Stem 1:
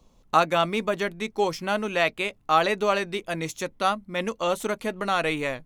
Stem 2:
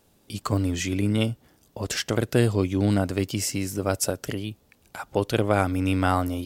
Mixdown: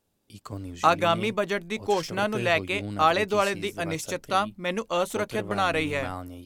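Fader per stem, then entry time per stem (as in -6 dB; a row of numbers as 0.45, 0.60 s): -0.5, -12.5 dB; 0.50, 0.00 s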